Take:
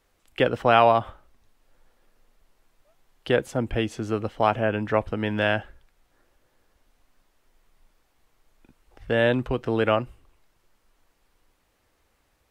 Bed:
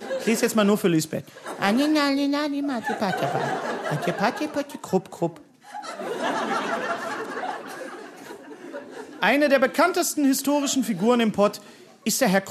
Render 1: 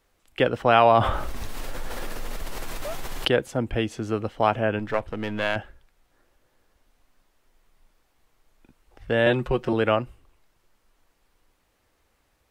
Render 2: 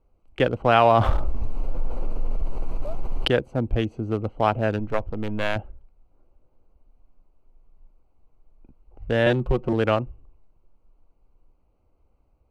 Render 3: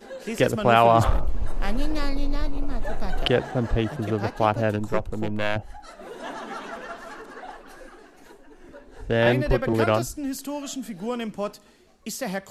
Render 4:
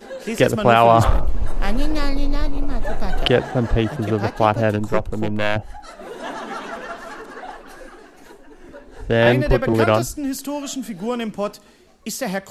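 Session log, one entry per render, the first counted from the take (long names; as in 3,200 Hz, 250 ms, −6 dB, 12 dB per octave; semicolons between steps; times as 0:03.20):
0:00.85–0:03.28: envelope flattener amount 70%; 0:04.79–0:05.56: gain on one half-wave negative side −7 dB; 0:09.26–0:09.73: comb filter 5.5 ms, depth 93%
adaptive Wiener filter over 25 samples; low-shelf EQ 92 Hz +10 dB
mix in bed −9.5 dB
level +5 dB; brickwall limiter −1 dBFS, peak gain reduction 2.5 dB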